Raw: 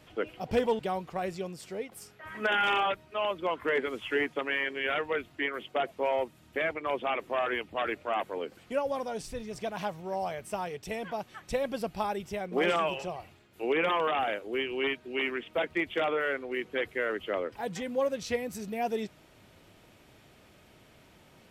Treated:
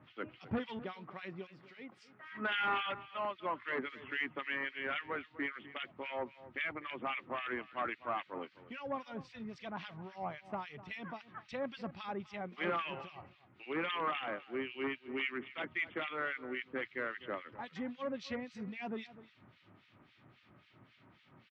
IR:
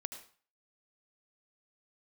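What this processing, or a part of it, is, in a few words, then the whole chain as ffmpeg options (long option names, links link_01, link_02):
guitar amplifier with harmonic tremolo: -filter_complex "[0:a]acrossover=split=1700[link_01][link_02];[link_01]aeval=exprs='val(0)*(1-1/2+1/2*cos(2*PI*3.7*n/s))':channel_layout=same[link_03];[link_02]aeval=exprs='val(0)*(1-1/2-1/2*cos(2*PI*3.7*n/s))':channel_layout=same[link_04];[link_03][link_04]amix=inputs=2:normalize=0,asoftclip=type=tanh:threshold=-23.5dB,highpass=99,equalizer=frequency=120:width_type=q:width=4:gain=6,equalizer=frequency=250:width_type=q:width=4:gain=3,equalizer=frequency=460:width_type=q:width=4:gain=-9,equalizer=frequency=670:width_type=q:width=4:gain=-5,equalizer=frequency=1200:width_type=q:width=4:gain=5,equalizer=frequency=2000:width_type=q:width=4:gain=3,lowpass=frequency=4100:width=0.5412,lowpass=frequency=4100:width=1.3066,asettb=1/sr,asplit=3[link_05][link_06][link_07];[link_05]atrim=end=0.584[link_08];[link_06]atrim=start=0.58:end=2.3,asetpts=PTS-STARTPTS,afade=type=in:duration=0.004:curve=qsin,afade=type=out:start_time=1.716:duration=0.004:curve=qsin,highpass=170[link_09];[link_07]atrim=start=2.296[link_10];[link_08][link_09]acrossfade=duration=0.004:curve1=hsin:curve2=qsin[link_11];[link_11][link_10]acrossfade=duration=0.004:curve1=qsin:curve2=hsin,asplit=2[link_12][link_13];[link_13]adelay=250.7,volume=-16dB,highshelf=frequency=4000:gain=-5.64[link_14];[link_12][link_14]amix=inputs=2:normalize=0,volume=-1.5dB"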